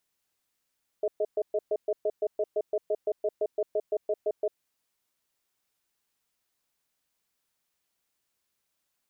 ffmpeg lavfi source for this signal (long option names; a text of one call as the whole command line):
ffmpeg -f lavfi -i "aevalsrc='0.0473*(sin(2*PI*424*t)+sin(2*PI*627*t))*clip(min(mod(t,0.17),0.05-mod(t,0.17))/0.005,0,1)':duration=3.53:sample_rate=44100" out.wav